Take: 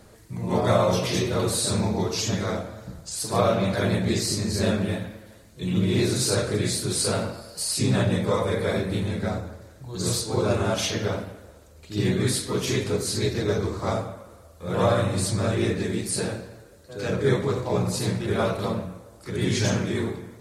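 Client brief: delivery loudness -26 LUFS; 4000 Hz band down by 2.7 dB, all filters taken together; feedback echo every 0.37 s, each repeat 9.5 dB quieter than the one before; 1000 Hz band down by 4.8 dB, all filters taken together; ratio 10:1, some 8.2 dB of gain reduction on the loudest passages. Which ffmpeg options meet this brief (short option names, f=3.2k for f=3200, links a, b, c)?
-af "equalizer=f=1k:t=o:g=-6.5,equalizer=f=4k:t=o:g=-3,acompressor=threshold=-26dB:ratio=10,aecho=1:1:370|740|1110|1480:0.335|0.111|0.0365|0.012,volume=5dB"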